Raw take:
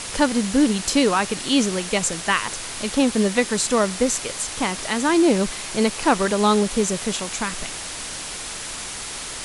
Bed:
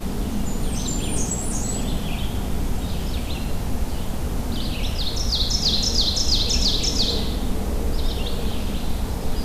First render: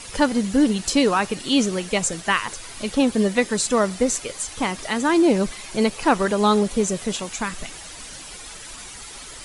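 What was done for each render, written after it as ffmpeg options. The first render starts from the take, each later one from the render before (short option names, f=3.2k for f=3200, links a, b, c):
-af "afftdn=nr=10:nf=-32"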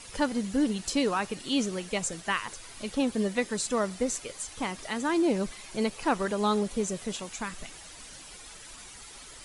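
-af "volume=-8.5dB"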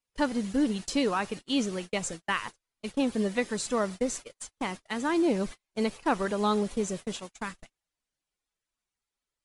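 -af "agate=range=-42dB:threshold=-36dB:ratio=16:detection=peak,highshelf=f=7k:g=-5.5"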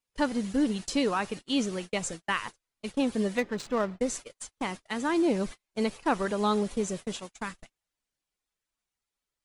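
-filter_complex "[0:a]asettb=1/sr,asplit=3[a][b][c];[a]atrim=end=3.384[d];[b]atrim=start=3.38:end=4.01,asetpts=PTS-STARTPTS,afade=t=in:d=0.004:c=qsin,afade=t=out:st=0.626:d=0.004:c=qsin,adynamicsmooth=sensitivity=7:basefreq=1.3k[e];[c]atrim=start=4.006[f];[d][e]acrossfade=d=0.004:c1=hsin:c2=qsin[g];[g][f]acrossfade=d=0.004:c1=qsin:c2=hsin"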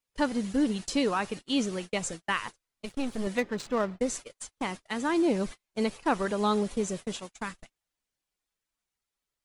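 -filter_complex "[0:a]asettb=1/sr,asplit=3[a][b][c];[a]atrim=end=2.854[d];[b]atrim=start=2.85:end=3.27,asetpts=PTS-STARTPTS,afade=t=in:d=0.004:c=qsin,afade=t=out:st=0.416:d=0.004:c=qsin,aeval=exprs='if(lt(val(0),0),0.251*val(0),val(0))':c=same[e];[c]atrim=start=3.266[f];[d][e]acrossfade=d=0.004:c1=hsin:c2=qsin[g];[g][f]acrossfade=d=0.004:c1=qsin:c2=hsin"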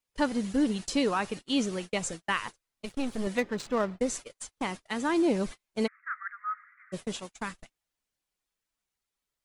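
-filter_complex "[0:a]asplit=3[a][b][c];[a]afade=t=out:st=5.86:d=0.02[d];[b]asuperpass=centerf=1600:order=12:qfactor=1.8,afade=t=in:st=5.86:d=0.02,afade=t=out:st=6.92:d=0.02[e];[c]afade=t=in:st=6.92:d=0.02[f];[d][e][f]amix=inputs=3:normalize=0"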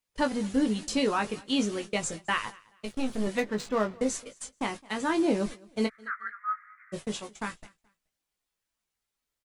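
-filter_complex "[0:a]asplit=2[a][b];[b]adelay=19,volume=-6dB[c];[a][c]amix=inputs=2:normalize=0,aecho=1:1:214|428:0.0631|0.0158"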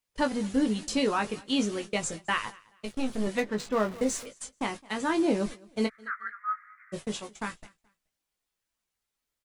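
-filter_complex "[0:a]asettb=1/sr,asplit=3[a][b][c];[a]atrim=end=3.724[d];[b]atrim=start=3.72:end=4.26,asetpts=PTS-STARTPTS,afade=t=in:d=0.004:c=qsin,afade=t=out:st=0.536:d=0.004:c=qsin,aeval=exprs='val(0)+0.5*0.00841*sgn(val(0))':c=same[e];[c]atrim=start=4.256[f];[d][e]acrossfade=d=0.004:c1=hsin:c2=qsin[g];[g][f]acrossfade=d=0.004:c1=qsin:c2=hsin"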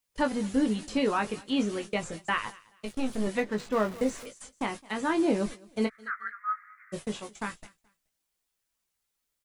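-filter_complex "[0:a]acrossover=split=3000[a][b];[b]acompressor=threshold=-48dB:ratio=4:attack=1:release=60[c];[a][c]amix=inputs=2:normalize=0,highshelf=f=6.2k:g=6"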